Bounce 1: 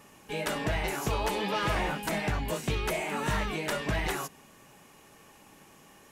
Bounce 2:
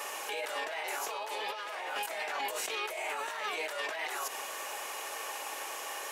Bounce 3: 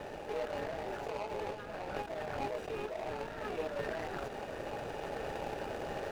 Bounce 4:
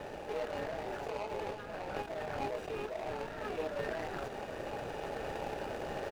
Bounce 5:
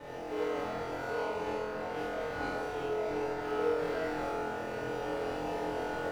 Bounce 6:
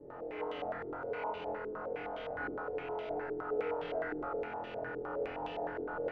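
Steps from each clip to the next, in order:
high-pass filter 500 Hz 24 dB per octave; compressor whose output falls as the input rises −44 dBFS, ratio −1; brickwall limiter −34.5 dBFS, peak gain reduction 9.5 dB; level +8.5 dB
running median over 41 samples; high-shelf EQ 7,000 Hz −11 dB; speech leveller 2 s; level +6.5 dB
double-tracking delay 32 ms −14 dB
flutter between parallel walls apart 4 metres, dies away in 0.81 s; feedback delay network reverb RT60 1.4 s, low-frequency decay 0.75×, high-frequency decay 0.5×, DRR −7 dB; level −8.5 dB
low-pass on a step sequencer 9.7 Hz 380–3,100 Hz; level −8 dB

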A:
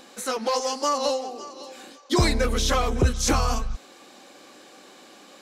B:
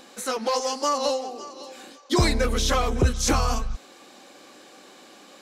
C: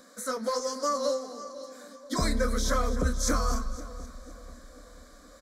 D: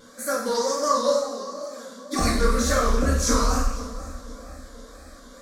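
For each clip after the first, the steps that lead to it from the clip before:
no processing that can be heard
phaser with its sweep stopped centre 550 Hz, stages 8; double-tracking delay 28 ms −13 dB; echo with a time of its own for lows and highs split 890 Hz, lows 489 ms, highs 257 ms, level −15 dB; level −3 dB
loose part that buzzes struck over −31 dBFS, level −38 dBFS; tape wow and flutter 150 cents; coupled-rooms reverb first 0.69 s, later 2.2 s, DRR −5.5 dB

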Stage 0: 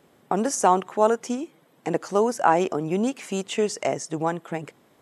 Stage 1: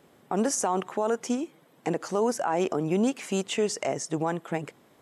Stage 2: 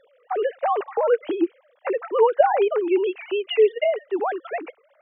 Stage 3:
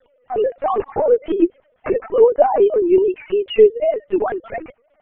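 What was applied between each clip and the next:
brickwall limiter −16.5 dBFS, peak gain reduction 11.5 dB
three sine waves on the formant tracks; level +6 dB
linear-prediction vocoder at 8 kHz pitch kept; dynamic equaliser 350 Hz, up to +7 dB, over −32 dBFS, Q 0.83

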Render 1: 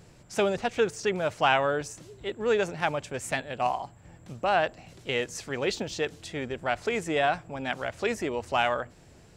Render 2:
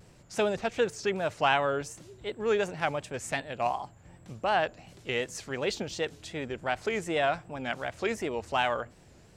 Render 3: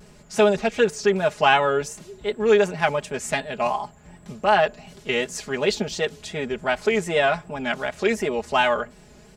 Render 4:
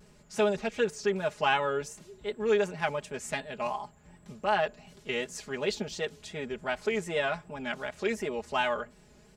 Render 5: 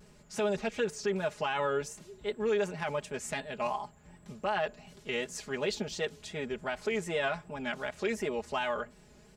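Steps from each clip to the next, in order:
pitch vibrato 2.7 Hz 85 cents; level −2 dB
comb filter 4.8 ms, depth 79%; level +5.5 dB
notch filter 710 Hz, Q 12; level −8.5 dB
brickwall limiter −21.5 dBFS, peak gain reduction 9 dB

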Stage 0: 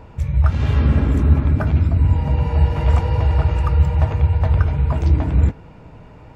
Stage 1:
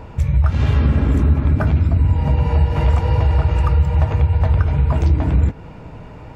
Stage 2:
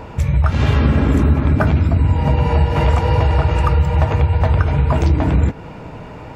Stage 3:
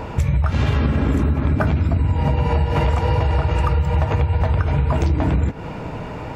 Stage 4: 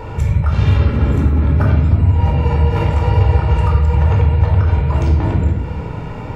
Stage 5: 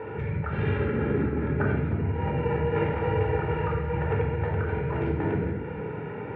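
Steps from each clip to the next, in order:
downward compressor 3 to 1, threshold −18 dBFS, peak gain reduction 8.5 dB; level +5.5 dB
low-shelf EQ 120 Hz −8.5 dB; level +6 dB
downward compressor, threshold −18 dBFS, peak gain reduction 10 dB; level +3.5 dB
rectangular room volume 2,000 cubic metres, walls furnished, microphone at 4.4 metres; level −4 dB
loudspeaker in its box 180–2,400 Hz, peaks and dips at 260 Hz −4 dB, 420 Hz +7 dB, 630 Hz −7 dB, 1,100 Hz −10 dB, 1,600 Hz +5 dB; level −4.5 dB

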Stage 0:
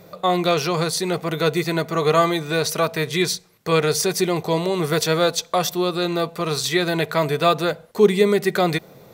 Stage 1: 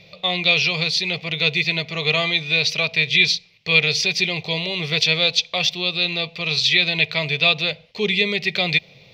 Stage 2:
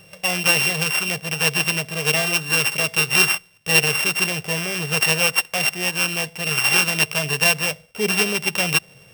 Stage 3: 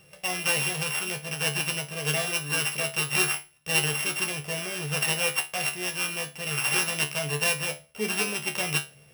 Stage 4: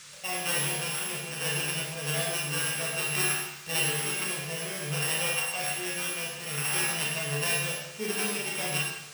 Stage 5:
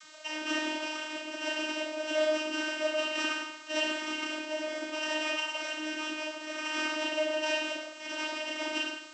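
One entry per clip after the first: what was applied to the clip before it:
drawn EQ curve 140 Hz 0 dB, 320 Hz −12 dB, 550 Hz −5 dB, 1,500 Hz −12 dB, 2,400 Hz +15 dB, 5,100 Hz +6 dB, 8,800 Hz −21 dB; level −1 dB
samples sorted by size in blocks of 16 samples
tuned comb filter 73 Hz, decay 0.25 s, harmonics all, mix 90%
four-comb reverb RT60 0.88 s, combs from 28 ms, DRR −2 dB; noise in a band 1,100–9,100 Hz −43 dBFS; level −5.5 dB
channel vocoder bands 32, saw 309 Hz

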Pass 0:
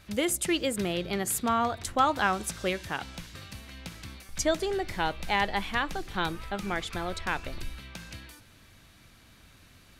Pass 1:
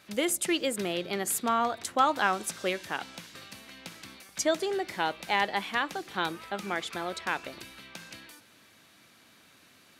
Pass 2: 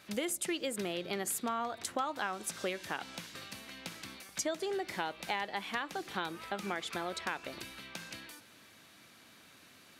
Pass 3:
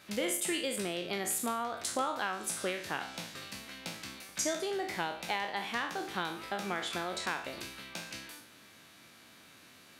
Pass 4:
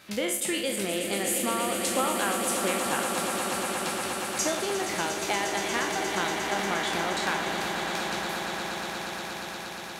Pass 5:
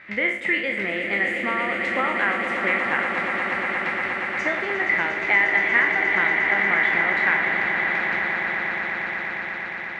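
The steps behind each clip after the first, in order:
high-pass filter 230 Hz 12 dB per octave
downward compressor 4 to 1, threshold −33 dBFS, peak gain reduction 12.5 dB
peak hold with a decay on every bin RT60 0.52 s
echo that builds up and dies away 118 ms, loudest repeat 8, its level −10 dB; level +4 dB
low-pass with resonance 2,000 Hz, resonance Q 9.6

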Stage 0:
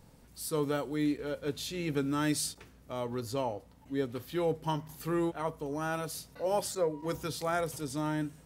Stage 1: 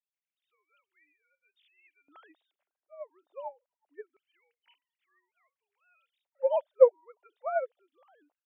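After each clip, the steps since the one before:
three sine waves on the formant tracks
auto-filter high-pass square 0.24 Hz 650–2,400 Hz
expander for the loud parts 2.5 to 1, over −38 dBFS
level +7 dB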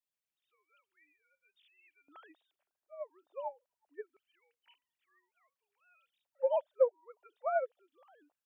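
notch filter 2,100 Hz, Q 13
downward compressor 2.5 to 1, threshold −27 dBFS, peak gain reduction 10.5 dB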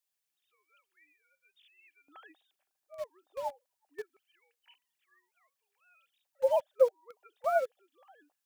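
high-shelf EQ 2,500 Hz +8 dB
hollow resonant body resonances 780/1,700 Hz, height 8 dB, ringing for 85 ms
in parallel at −8.5 dB: bit reduction 7 bits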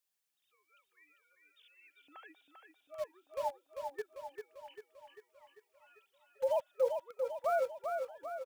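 brickwall limiter −24 dBFS, peak gain reduction 11 dB
on a send: repeating echo 395 ms, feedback 55%, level −5.5 dB

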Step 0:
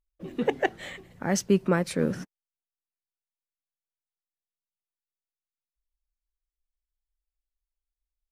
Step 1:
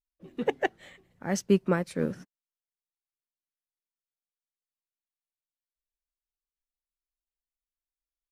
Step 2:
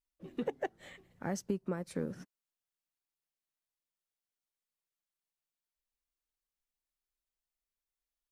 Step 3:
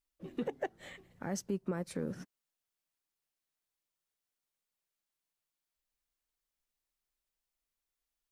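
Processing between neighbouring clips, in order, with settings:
expander for the loud parts 1.5 to 1, over −44 dBFS
dynamic equaliser 2,600 Hz, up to −7 dB, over −46 dBFS, Q 0.81; downward compressor 6 to 1, threshold −32 dBFS, peak gain reduction 14.5 dB
brickwall limiter −28.5 dBFS, peak gain reduction 6 dB; level +2.5 dB

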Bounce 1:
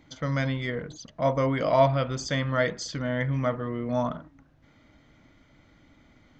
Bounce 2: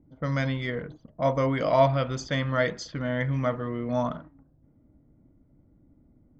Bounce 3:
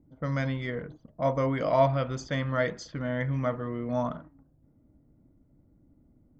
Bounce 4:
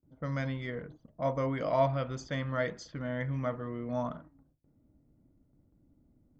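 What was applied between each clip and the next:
low-pass that shuts in the quiet parts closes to 340 Hz, open at −24 dBFS
parametric band 3,800 Hz −4 dB 1.5 octaves; level −2 dB
noise gate with hold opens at −54 dBFS; level −4.5 dB

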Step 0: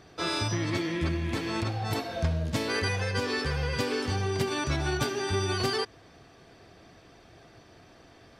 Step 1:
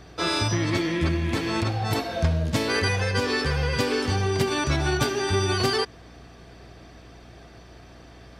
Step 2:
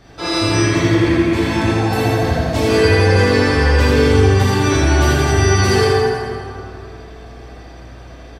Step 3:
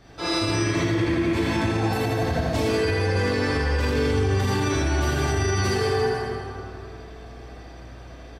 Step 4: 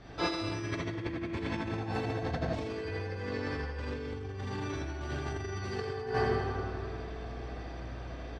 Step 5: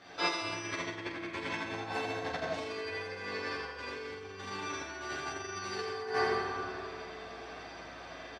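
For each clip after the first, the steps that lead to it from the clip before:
mains hum 60 Hz, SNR 24 dB; level +5 dB
repeating echo 82 ms, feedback 56%, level −4.5 dB; dense smooth reverb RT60 2.7 s, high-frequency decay 0.45×, DRR −8.5 dB; level −2 dB
brickwall limiter −9.5 dBFS, peak gain reduction 8 dB; level −5 dB
compressor whose output falls as the input rises −27 dBFS, ratio −0.5; high-frequency loss of the air 100 metres; level −5.5 dB
high-pass filter 900 Hz 6 dB per octave; on a send: ambience of single reflections 11 ms −3.5 dB, 46 ms −7.5 dB; on the sum: level +2.5 dB

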